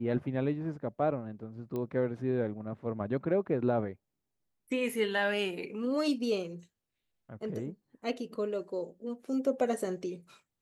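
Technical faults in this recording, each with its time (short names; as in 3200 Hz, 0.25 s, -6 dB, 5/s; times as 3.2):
1.76 pop -25 dBFS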